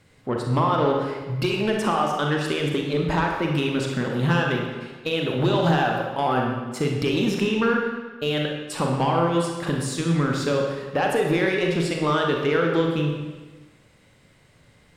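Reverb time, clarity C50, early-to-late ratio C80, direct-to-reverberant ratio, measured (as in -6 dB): 1.3 s, 2.0 dB, 4.5 dB, 0.5 dB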